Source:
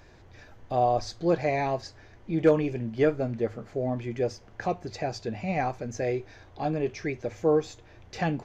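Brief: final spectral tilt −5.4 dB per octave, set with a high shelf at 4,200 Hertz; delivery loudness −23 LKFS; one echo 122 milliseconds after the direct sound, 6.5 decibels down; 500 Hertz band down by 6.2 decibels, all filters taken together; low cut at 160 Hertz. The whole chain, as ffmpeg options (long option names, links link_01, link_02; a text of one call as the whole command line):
ffmpeg -i in.wav -af "highpass=160,equalizer=frequency=500:width_type=o:gain=-7.5,highshelf=frequency=4200:gain=4.5,aecho=1:1:122:0.473,volume=9dB" out.wav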